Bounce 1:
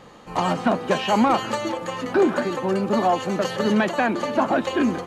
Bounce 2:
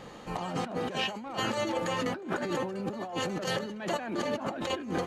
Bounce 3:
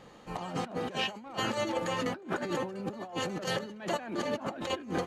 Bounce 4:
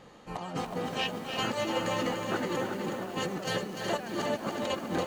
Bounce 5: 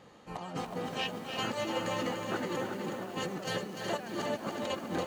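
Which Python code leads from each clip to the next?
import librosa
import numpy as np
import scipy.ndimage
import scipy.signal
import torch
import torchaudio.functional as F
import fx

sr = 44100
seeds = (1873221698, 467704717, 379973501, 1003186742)

y1 = fx.peak_eq(x, sr, hz=1100.0, db=-3.0, octaves=0.54)
y1 = fx.over_compress(y1, sr, threshold_db=-29.0, ratio=-1.0)
y1 = F.gain(torch.from_numpy(y1), -5.0).numpy()
y2 = fx.upward_expand(y1, sr, threshold_db=-42.0, expansion=1.5)
y3 = fx.echo_feedback(y2, sr, ms=368, feedback_pct=43, wet_db=-7.0)
y3 = fx.echo_crushed(y3, sr, ms=295, feedback_pct=55, bits=8, wet_db=-7.0)
y4 = scipy.signal.sosfilt(scipy.signal.butter(2, 40.0, 'highpass', fs=sr, output='sos'), y3)
y4 = F.gain(torch.from_numpy(y4), -3.0).numpy()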